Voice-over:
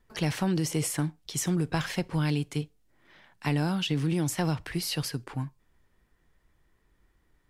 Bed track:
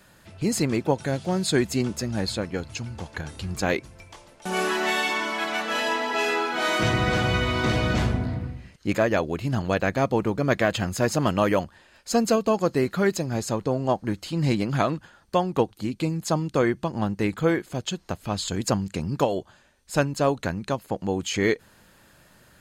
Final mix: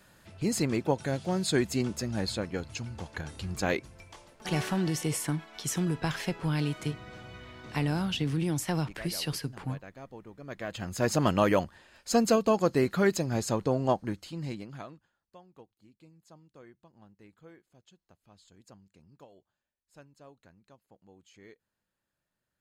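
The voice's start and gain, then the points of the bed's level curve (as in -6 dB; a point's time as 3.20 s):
4.30 s, -2.0 dB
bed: 4.29 s -4.5 dB
4.96 s -23.5 dB
10.35 s -23.5 dB
11.11 s -2.5 dB
13.89 s -2.5 dB
15.39 s -31 dB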